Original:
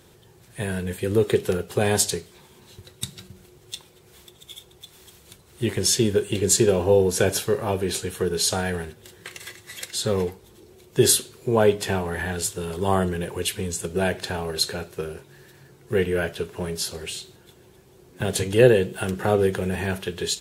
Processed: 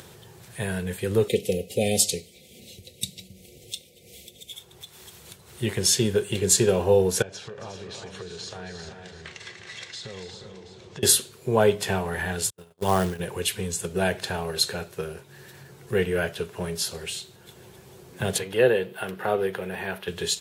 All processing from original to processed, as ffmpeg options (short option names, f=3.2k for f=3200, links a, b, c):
-filter_complex "[0:a]asettb=1/sr,asplit=3[a][b][c];[a]atrim=end=1.284[d];[b]atrim=start=1.28:end=4.53,asetpts=PTS-STARTPTS,afade=t=in:d=0.004:c=qsin,afade=t=out:st=3.246:d=0.004:c=qsin,asuperstop=centerf=1200:order=12:qfactor=0.86,aecho=1:1:3.9:0.47,atrim=end_sample=143325[e];[c]atrim=start=4.526[f];[d][e]acrossfade=d=0.004:c1=hsin:c2=qsin[g];[g][f]acrossfade=d=0.004:c1=qsin:c2=hsin,asettb=1/sr,asplit=3[h][i][j];[h]atrim=end=7.224[k];[i]atrim=start=7.22:end=11.03,asetpts=PTS-STARTPTS,afade=t=in:d=0.004:c=qsin,afade=t=out:st=3.806:d=0.004:c=qsin,lowpass=f=6.3k:w=0.5412,lowpass=f=6.3k:w=1.3066,acompressor=threshold=-34dB:ratio=10:attack=3.2:release=140:knee=1:detection=peak,aecho=1:1:273|358|395|725:0.266|0.355|0.316|0.133,atrim=end_sample=168021[l];[j]atrim=start=11.026[m];[k][l]acrossfade=d=0.004:c1=hsin:c2=qsin[n];[n][m]acrossfade=d=0.004:c1=qsin:c2=hsin,asettb=1/sr,asplit=3[o][p][q];[o]atrim=end=12.504[r];[p]atrim=start=12.5:end=13.2,asetpts=PTS-STARTPTS,afade=t=in:d=0.004:c=qsin,afade=t=out:st=0.696:d=0.004:c=qsin,agate=range=-45dB:threshold=-27dB:ratio=16:release=100:detection=peak,acrusher=bits=4:mode=log:mix=0:aa=0.000001[s];[q]atrim=start=13.196[t];[r][s]acrossfade=d=0.004:c1=hsin:c2=qsin[u];[u][t]acrossfade=d=0.004:c1=qsin:c2=hsin,asettb=1/sr,asplit=3[v][w][x];[v]atrim=end=18.384[y];[w]atrim=start=18.38:end=20.08,asetpts=PTS-STARTPTS,afade=t=in:d=0.004:c=qsin,afade=t=out:st=1.696:d=0.004:c=qsin,highpass=f=430:p=1,equalizer=f=7.2k:t=o:w=1.2:g=-14[z];[x]atrim=start=20.076[aa];[y][z]acrossfade=d=0.004:c1=hsin:c2=qsin[ab];[ab][aa]acrossfade=d=0.004:c1=qsin:c2=hsin,equalizer=f=300:t=o:w=0.58:g=-7,acompressor=mode=upward:threshold=-39dB:ratio=2.5,highpass=80"